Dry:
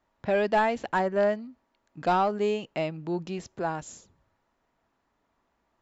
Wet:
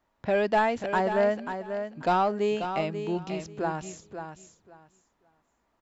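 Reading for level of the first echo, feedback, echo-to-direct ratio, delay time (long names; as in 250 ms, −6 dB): −8.5 dB, 19%, −8.5 dB, 538 ms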